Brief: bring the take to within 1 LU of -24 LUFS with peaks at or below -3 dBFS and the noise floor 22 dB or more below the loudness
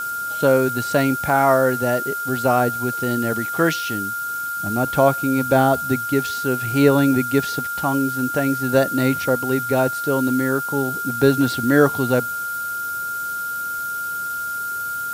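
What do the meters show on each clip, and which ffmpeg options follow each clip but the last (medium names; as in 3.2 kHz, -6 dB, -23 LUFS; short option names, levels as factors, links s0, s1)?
steady tone 1.4 kHz; tone level -24 dBFS; noise floor -27 dBFS; noise floor target -42 dBFS; loudness -20.0 LUFS; peak level -2.5 dBFS; loudness target -24.0 LUFS
-> -af "bandreject=f=1400:w=30"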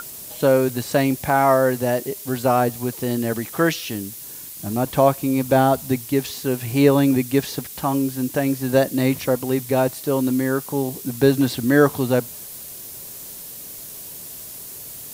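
steady tone not found; noise floor -37 dBFS; noise floor target -43 dBFS
-> -af "afftdn=nr=6:nf=-37"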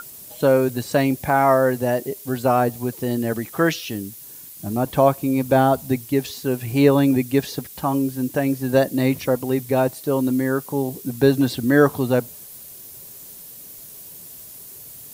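noise floor -40 dBFS; noise floor target -43 dBFS
-> -af "afftdn=nr=6:nf=-40"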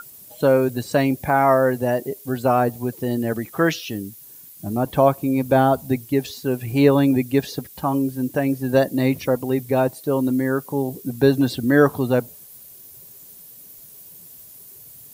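noise floor -44 dBFS; loudness -20.5 LUFS; peak level -2.5 dBFS; loudness target -24.0 LUFS
-> -af "volume=0.668"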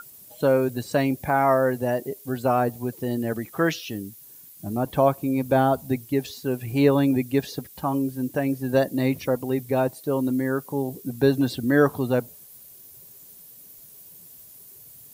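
loudness -24.0 LUFS; peak level -6.0 dBFS; noise floor -48 dBFS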